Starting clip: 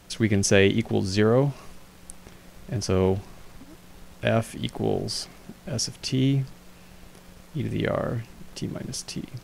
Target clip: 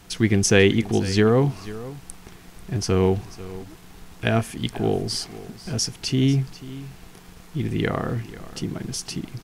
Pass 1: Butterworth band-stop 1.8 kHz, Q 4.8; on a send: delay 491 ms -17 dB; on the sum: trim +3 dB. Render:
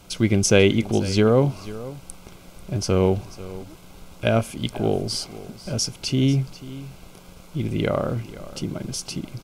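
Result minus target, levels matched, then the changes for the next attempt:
2 kHz band -3.0 dB
change: Butterworth band-stop 570 Hz, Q 4.8

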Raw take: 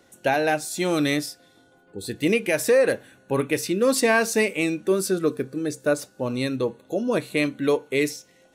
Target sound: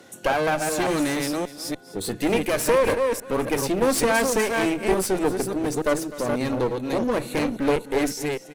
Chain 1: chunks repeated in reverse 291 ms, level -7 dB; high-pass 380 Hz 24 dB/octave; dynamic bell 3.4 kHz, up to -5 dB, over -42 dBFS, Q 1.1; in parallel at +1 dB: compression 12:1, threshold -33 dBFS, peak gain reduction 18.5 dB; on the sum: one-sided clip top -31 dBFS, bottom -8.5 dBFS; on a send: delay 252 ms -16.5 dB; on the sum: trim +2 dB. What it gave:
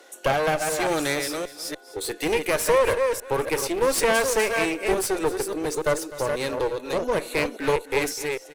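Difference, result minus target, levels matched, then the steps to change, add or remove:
125 Hz band -3.0 dB
change: high-pass 96 Hz 24 dB/octave

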